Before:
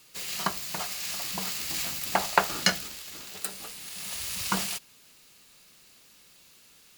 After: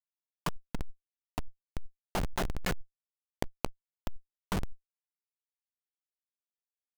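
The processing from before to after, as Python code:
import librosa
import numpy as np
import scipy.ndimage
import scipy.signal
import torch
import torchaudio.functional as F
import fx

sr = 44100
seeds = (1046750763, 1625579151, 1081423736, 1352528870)

y = scipy.signal.sosfilt(scipy.signal.butter(2, 2700.0, 'lowpass', fs=sr, output='sos'), x)
y = fx.quant_dither(y, sr, seeds[0], bits=8, dither='none')
y = fx.echo_stepped(y, sr, ms=423, hz=200.0, octaves=0.7, feedback_pct=70, wet_db=-7.5)
y = fx.schmitt(y, sr, flips_db=-27.5)
y = fx.env_flatten(y, sr, amount_pct=100)
y = y * 10.0 ** (5.5 / 20.0)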